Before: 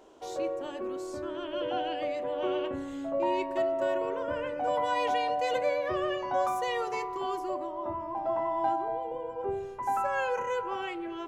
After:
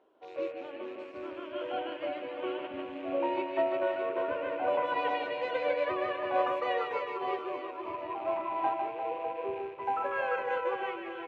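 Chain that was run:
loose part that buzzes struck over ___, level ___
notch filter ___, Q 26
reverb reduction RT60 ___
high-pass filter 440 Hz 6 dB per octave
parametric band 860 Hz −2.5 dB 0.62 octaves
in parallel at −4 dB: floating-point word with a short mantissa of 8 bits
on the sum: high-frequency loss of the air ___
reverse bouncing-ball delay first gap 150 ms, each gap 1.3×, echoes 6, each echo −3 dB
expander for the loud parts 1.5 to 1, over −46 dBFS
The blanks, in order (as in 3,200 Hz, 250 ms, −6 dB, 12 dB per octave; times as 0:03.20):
−51 dBFS, −36 dBFS, 4,800 Hz, 0.53 s, 380 metres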